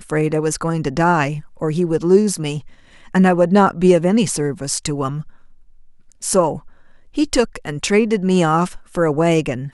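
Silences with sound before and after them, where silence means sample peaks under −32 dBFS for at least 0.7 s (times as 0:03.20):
0:05.29–0:06.12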